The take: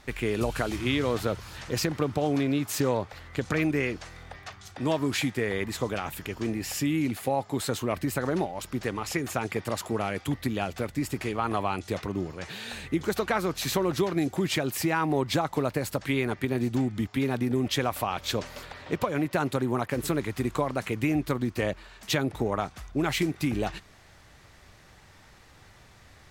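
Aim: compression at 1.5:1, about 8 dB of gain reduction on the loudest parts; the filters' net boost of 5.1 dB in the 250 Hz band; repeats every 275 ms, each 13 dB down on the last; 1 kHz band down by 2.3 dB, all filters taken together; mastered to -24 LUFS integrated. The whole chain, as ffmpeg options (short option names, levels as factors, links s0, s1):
-af "equalizer=f=250:t=o:g=6.5,equalizer=f=1000:t=o:g=-3.5,acompressor=threshold=0.00891:ratio=1.5,aecho=1:1:275|550|825:0.224|0.0493|0.0108,volume=2.99"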